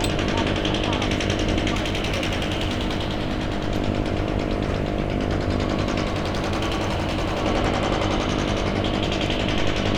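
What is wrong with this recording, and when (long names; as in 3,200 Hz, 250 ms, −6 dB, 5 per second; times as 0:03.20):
mains buzz 50 Hz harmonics 14 −27 dBFS
0:01.74–0:03.68: clipping −19.5 dBFS
0:06.06–0:07.43: clipping −20 dBFS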